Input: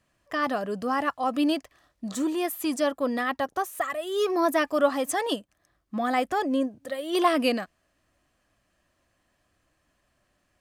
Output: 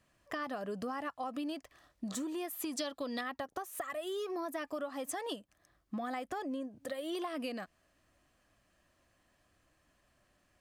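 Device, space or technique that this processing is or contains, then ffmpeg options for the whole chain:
serial compression, peaks first: -filter_complex "[0:a]acompressor=threshold=-31dB:ratio=6,acompressor=threshold=-37dB:ratio=2,asettb=1/sr,asplit=3[link_01][link_02][link_03];[link_01]atrim=end=2.774[link_04];[link_02]atrim=start=2.77:end=3.21,asetpts=PTS-STARTPTS,afade=type=in:duration=0.004:curve=qsin,afade=type=out:start_time=0.436:duration=0.004:curve=qsin,equalizer=frequency=4000:width_type=o:width=0.94:gain=14.5[link_05];[link_03]atrim=start=3.206[link_06];[link_04][link_05]acrossfade=duration=0.004:curve1=hsin:curve2=qsin[link_07];[link_07][link_06]acrossfade=duration=0.004:curve1=qsin:curve2=hsin,volume=-1dB"

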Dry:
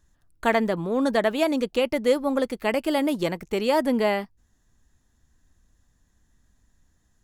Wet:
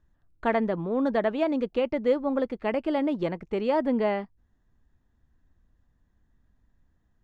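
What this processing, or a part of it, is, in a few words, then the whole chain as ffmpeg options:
phone in a pocket: -af "lowpass=3800,highshelf=frequency=2000:gain=-9,volume=-2dB"

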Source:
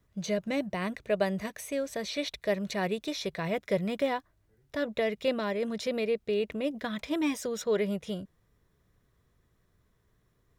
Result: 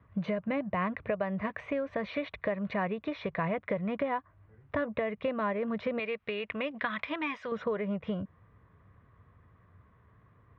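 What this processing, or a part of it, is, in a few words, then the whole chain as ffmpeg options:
bass amplifier: -filter_complex "[0:a]asettb=1/sr,asplit=3[link_01][link_02][link_03];[link_01]atrim=end=5.994[link_04];[link_02]atrim=start=5.99:end=7.52,asetpts=PTS-STARTPTS,afade=type=in:duration=0.004:curve=qsin,afade=type=out:start_time=1.526:duration=0.004:curve=qsin,tiltshelf=frequency=1100:gain=-9.5[link_05];[link_03]atrim=start=7.516[link_06];[link_04][link_05]acrossfade=duration=0.004:curve1=hsin:curve2=qsin[link_07];[link_07][link_06]acrossfade=duration=0.004:curve1=qsin:curve2=hsin,acompressor=threshold=-37dB:ratio=6,highpass=62,equalizer=frequency=94:width_type=q:width=4:gain=9,equalizer=frequency=370:width_type=q:width=4:gain=-6,equalizer=frequency=1100:width_type=q:width=4:gain=8,lowpass=frequency=2400:width=0.5412,lowpass=frequency=2400:width=1.3066,volume=8.5dB"

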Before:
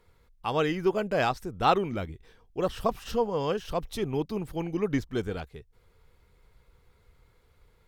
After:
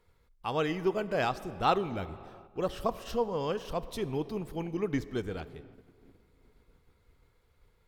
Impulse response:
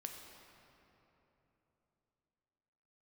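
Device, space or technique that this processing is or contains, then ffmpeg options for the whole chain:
keyed gated reverb: -filter_complex "[0:a]asplit=3[link_01][link_02][link_03];[1:a]atrim=start_sample=2205[link_04];[link_02][link_04]afir=irnorm=-1:irlink=0[link_05];[link_03]apad=whole_len=347482[link_06];[link_05][link_06]sidechaingate=range=-9dB:threshold=-58dB:ratio=16:detection=peak,volume=-5dB[link_07];[link_01][link_07]amix=inputs=2:normalize=0,volume=-6dB"

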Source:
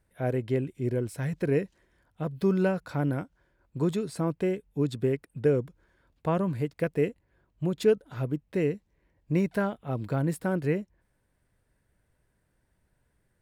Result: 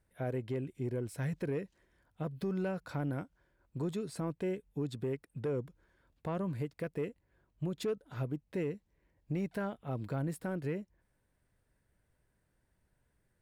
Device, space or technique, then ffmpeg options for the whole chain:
soft clipper into limiter: -af "asoftclip=type=tanh:threshold=-16dB,alimiter=limit=-24dB:level=0:latency=1:release=239,volume=-4dB"

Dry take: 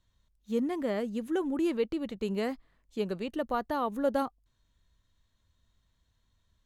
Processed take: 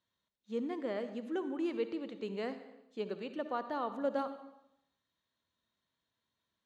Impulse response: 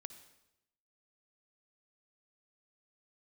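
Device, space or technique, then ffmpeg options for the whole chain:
supermarket ceiling speaker: -filter_complex "[0:a]highpass=240,lowpass=5100[link_01];[1:a]atrim=start_sample=2205[link_02];[link_01][link_02]afir=irnorm=-1:irlink=0"

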